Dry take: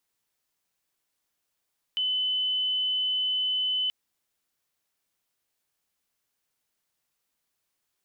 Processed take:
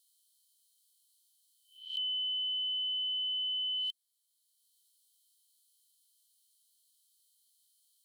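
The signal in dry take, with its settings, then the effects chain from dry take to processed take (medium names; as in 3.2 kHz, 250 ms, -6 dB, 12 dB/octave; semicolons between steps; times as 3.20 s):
tone sine 3.02 kHz -24 dBFS 1.93 s
reverse spectral sustain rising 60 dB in 0.35 s; rippled Chebyshev high-pass 3 kHz, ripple 9 dB; three bands compressed up and down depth 40%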